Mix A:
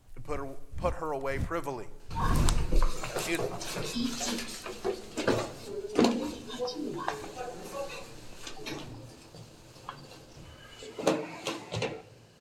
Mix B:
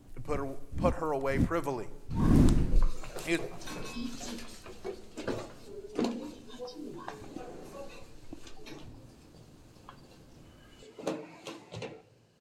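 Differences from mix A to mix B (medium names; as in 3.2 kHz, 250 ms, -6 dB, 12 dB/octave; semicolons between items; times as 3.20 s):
first sound: add peaking EQ 280 Hz +10.5 dB 1.3 oct; second sound -10.0 dB; master: add peaking EQ 240 Hz +3.5 dB 2.3 oct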